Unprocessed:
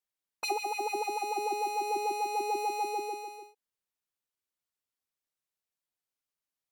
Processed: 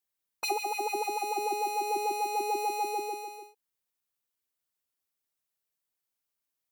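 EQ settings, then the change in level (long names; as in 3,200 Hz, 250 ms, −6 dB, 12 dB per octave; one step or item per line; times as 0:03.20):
high-shelf EQ 11,000 Hz +8 dB
+1.0 dB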